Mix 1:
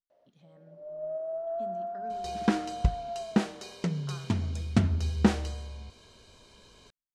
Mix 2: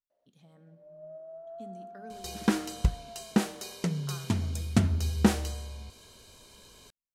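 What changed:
first sound −11.0 dB
master: remove high-frequency loss of the air 79 metres

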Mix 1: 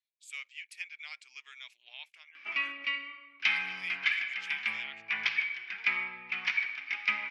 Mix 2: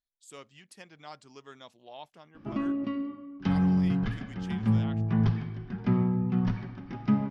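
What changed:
background −9.0 dB
master: remove high-pass with resonance 2,300 Hz, resonance Q 8.1

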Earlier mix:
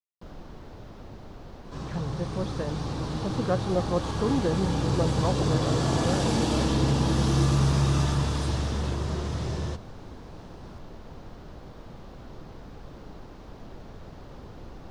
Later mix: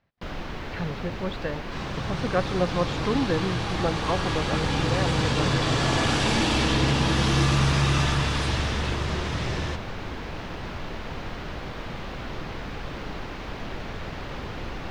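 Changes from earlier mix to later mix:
speech: entry −1.15 s
first sound +8.0 dB
master: add parametric band 2,300 Hz +12.5 dB 1.7 octaves

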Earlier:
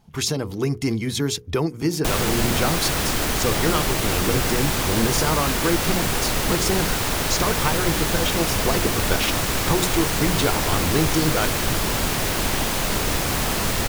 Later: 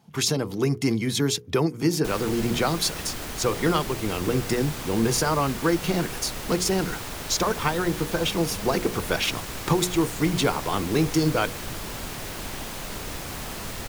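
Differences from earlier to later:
speech: add high-pass filter 110 Hz 24 dB per octave
background −11.5 dB

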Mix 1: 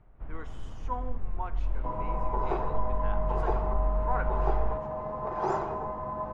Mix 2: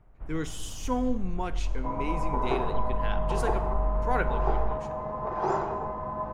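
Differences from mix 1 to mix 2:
speech: remove resonant band-pass 1,000 Hz, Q 2.1
second sound: send +6.0 dB

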